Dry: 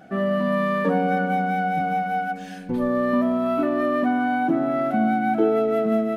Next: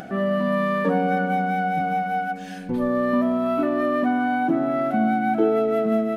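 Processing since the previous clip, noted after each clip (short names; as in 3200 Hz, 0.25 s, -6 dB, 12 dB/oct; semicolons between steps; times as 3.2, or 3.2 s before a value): upward compressor, threshold -29 dBFS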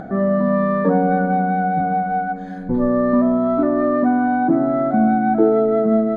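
running mean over 16 samples; low shelf 61 Hz +10.5 dB; gain +5 dB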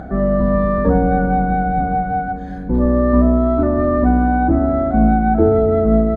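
octaver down 2 oct, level 0 dB; doubler 32 ms -13.5 dB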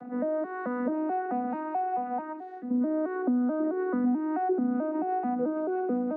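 arpeggiated vocoder major triad, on B3, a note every 0.218 s; compressor 2.5:1, threshold -20 dBFS, peak gain reduction 8.5 dB; gain -7 dB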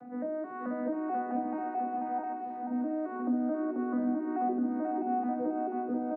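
feedback echo 0.486 s, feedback 37%, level -4.5 dB; on a send at -5 dB: reverb RT60 0.45 s, pre-delay 3 ms; on the sum: gain -7.5 dB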